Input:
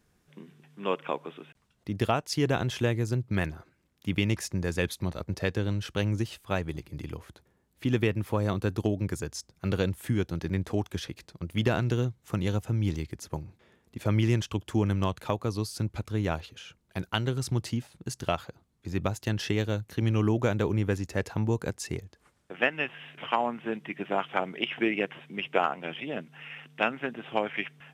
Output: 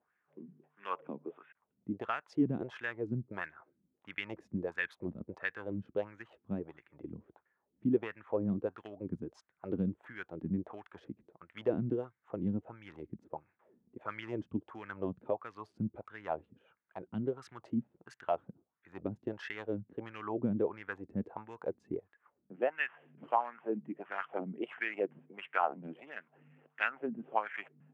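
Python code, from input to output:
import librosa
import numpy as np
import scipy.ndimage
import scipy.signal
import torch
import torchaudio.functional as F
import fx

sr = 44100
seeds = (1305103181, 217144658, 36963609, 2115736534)

y = fx.wiener(x, sr, points=9)
y = fx.wah_lfo(y, sr, hz=1.5, low_hz=200.0, high_hz=1800.0, q=3.5)
y = F.gain(torch.from_numpy(y), 2.5).numpy()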